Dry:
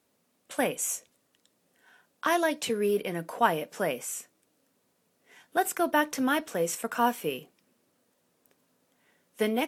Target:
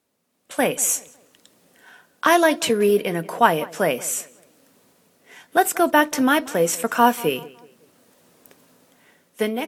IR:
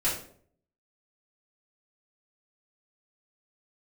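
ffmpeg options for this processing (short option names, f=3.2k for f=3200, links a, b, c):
-filter_complex "[0:a]dynaudnorm=f=140:g=9:m=16.5dB,asplit=2[a][b];[b]adelay=185,lowpass=f=2.8k:p=1,volume=-20dB,asplit=2[c][d];[d]adelay=185,lowpass=f=2.8k:p=1,volume=0.39,asplit=2[e][f];[f]adelay=185,lowpass=f=2.8k:p=1,volume=0.39[g];[a][c][e][g]amix=inputs=4:normalize=0,volume=-1dB"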